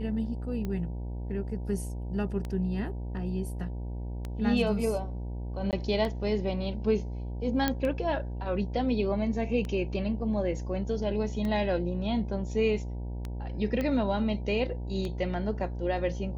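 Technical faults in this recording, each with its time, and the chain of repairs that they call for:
buzz 60 Hz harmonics 16 -35 dBFS
tick 33 1/3 rpm -22 dBFS
5.71–5.73 gap 18 ms
7.68 pop -12 dBFS
13.81 pop -19 dBFS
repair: de-click; de-hum 60 Hz, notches 16; interpolate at 5.71, 18 ms

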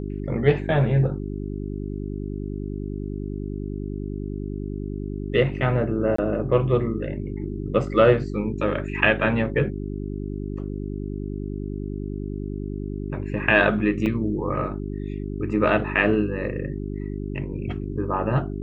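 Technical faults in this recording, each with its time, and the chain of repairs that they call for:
hum 50 Hz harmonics 8 -30 dBFS
6.16–6.18 gap 24 ms
14.06 gap 2 ms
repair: de-hum 50 Hz, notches 8; interpolate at 6.16, 24 ms; interpolate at 14.06, 2 ms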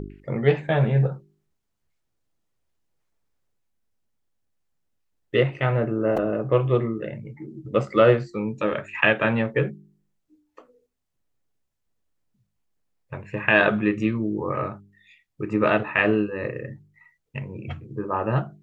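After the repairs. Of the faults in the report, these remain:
none

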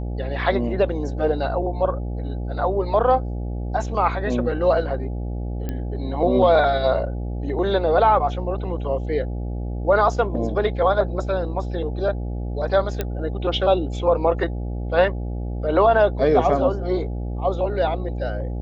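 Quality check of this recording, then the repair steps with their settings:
buzz 60 Hz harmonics 14 -27 dBFS
5.69 pop -15 dBFS
13.01 pop -10 dBFS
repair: de-click; de-hum 60 Hz, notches 14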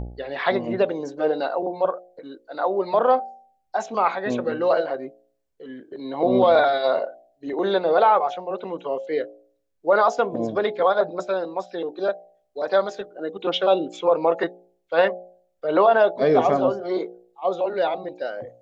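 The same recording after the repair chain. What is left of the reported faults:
none

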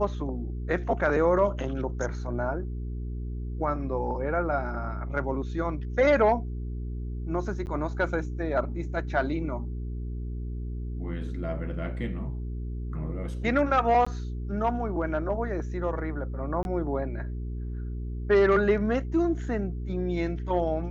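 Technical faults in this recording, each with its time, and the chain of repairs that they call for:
hum 60 Hz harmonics 7 -33 dBFS
7.66–7.67 gap 9.3 ms
14.05–14.06 gap 15 ms
16.63–16.65 gap 21 ms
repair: de-hum 60 Hz, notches 7; interpolate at 7.66, 9.3 ms; interpolate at 14.05, 15 ms; interpolate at 16.63, 21 ms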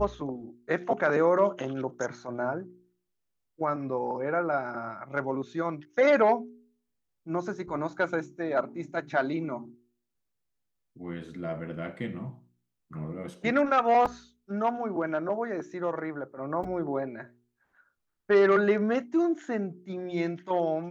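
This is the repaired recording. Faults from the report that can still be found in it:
none

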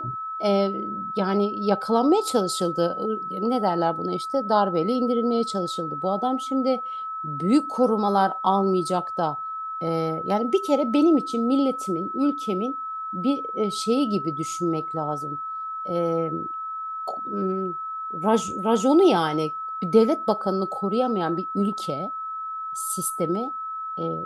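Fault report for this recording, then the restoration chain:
tone 1300 Hz -29 dBFS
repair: notch 1300 Hz, Q 30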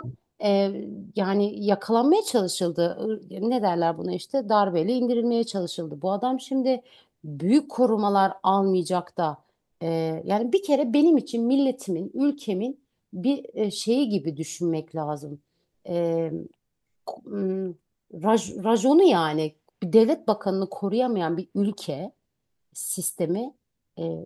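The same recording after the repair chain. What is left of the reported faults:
none

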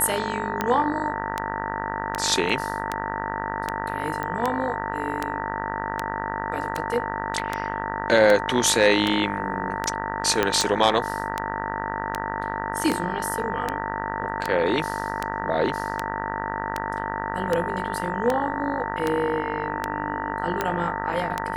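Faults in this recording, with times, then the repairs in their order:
buzz 50 Hz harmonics 39 -31 dBFS
tick 78 rpm -9 dBFS
tone 900 Hz -31 dBFS
4.23 pop -16 dBFS
10.43 pop -6 dBFS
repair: de-click; notch 900 Hz, Q 30; de-hum 50 Hz, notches 39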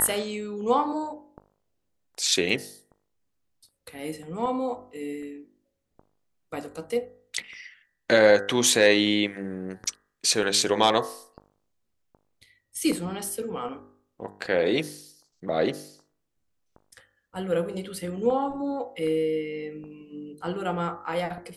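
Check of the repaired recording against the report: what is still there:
10.43 pop

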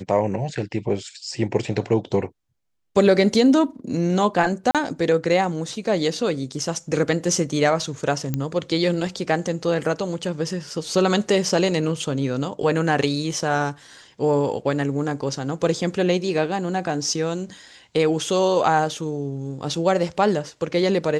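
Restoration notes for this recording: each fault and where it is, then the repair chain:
4.71–4.75 gap 37 ms
8.34 pop -11 dBFS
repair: de-click; interpolate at 4.71, 37 ms

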